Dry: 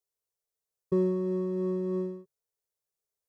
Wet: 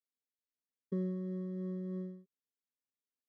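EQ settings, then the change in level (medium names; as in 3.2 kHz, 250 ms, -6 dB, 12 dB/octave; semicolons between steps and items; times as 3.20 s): dynamic bell 860 Hz, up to +7 dB, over -45 dBFS, Q 0.75; vowel filter i; static phaser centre 520 Hz, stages 8; +10.5 dB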